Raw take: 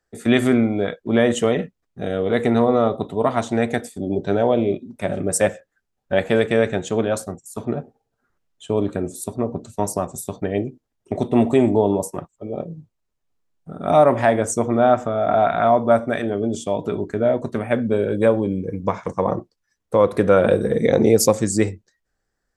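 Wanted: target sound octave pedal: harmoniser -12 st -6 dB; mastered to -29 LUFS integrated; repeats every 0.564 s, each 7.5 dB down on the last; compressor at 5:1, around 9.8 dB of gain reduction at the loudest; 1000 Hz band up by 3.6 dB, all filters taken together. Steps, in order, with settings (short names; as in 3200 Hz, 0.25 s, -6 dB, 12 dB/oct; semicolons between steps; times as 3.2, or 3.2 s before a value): bell 1000 Hz +5.5 dB; compressor 5:1, threshold -19 dBFS; feedback echo 0.564 s, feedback 42%, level -7.5 dB; harmoniser -12 st -6 dB; gain -5 dB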